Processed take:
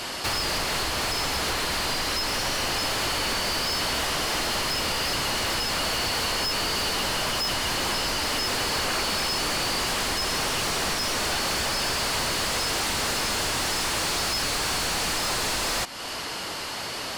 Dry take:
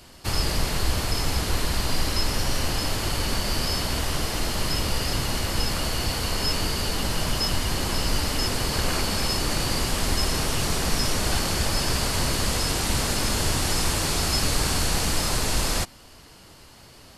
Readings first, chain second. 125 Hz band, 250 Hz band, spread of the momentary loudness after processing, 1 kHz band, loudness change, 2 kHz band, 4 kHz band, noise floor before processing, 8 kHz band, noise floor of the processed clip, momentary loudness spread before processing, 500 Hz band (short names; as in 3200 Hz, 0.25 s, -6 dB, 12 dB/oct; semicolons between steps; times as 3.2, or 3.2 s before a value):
-9.5 dB, -4.5 dB, 1 LU, +2.5 dB, 0.0 dB, +3.5 dB, +2.0 dB, -49 dBFS, -0.5 dB, -33 dBFS, 3 LU, 0.0 dB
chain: compressor 3:1, threshold -35 dBFS, peak gain reduction 13.5 dB; overdrive pedal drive 24 dB, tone 4700 Hz, clips at -21 dBFS; gain +3.5 dB